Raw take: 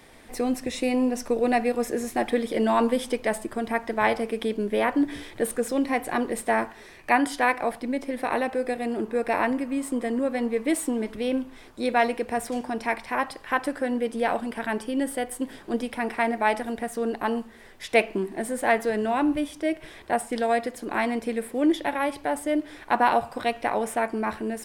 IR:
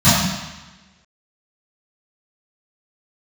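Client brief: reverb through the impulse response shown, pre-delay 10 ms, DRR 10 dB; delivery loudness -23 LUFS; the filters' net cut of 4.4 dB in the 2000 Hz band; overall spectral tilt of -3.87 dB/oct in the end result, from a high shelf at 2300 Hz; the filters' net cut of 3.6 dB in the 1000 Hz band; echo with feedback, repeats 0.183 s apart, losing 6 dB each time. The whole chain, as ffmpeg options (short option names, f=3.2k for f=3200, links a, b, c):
-filter_complex "[0:a]equalizer=f=1k:t=o:g=-5,equalizer=f=2k:t=o:g=-7.5,highshelf=f=2.3k:g=7.5,aecho=1:1:183|366|549|732|915|1098:0.501|0.251|0.125|0.0626|0.0313|0.0157,asplit=2[a][b];[1:a]atrim=start_sample=2205,adelay=10[c];[b][c]afir=irnorm=-1:irlink=0,volume=-36dB[d];[a][d]amix=inputs=2:normalize=0,volume=2dB"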